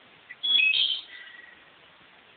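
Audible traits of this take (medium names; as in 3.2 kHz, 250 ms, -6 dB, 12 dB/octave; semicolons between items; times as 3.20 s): tremolo saw down 1.8 Hz, depth 55%; a quantiser's noise floor 8-bit, dither triangular; AMR-NB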